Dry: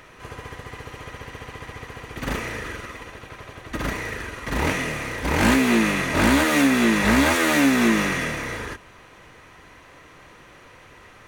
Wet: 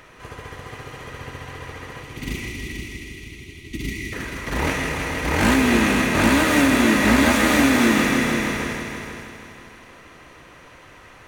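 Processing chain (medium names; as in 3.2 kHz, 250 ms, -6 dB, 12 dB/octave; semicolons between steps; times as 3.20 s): time-frequency box 2.03–4.13 s, 420–1900 Hz -26 dB; multi-head delay 159 ms, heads all three, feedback 45%, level -9.5 dB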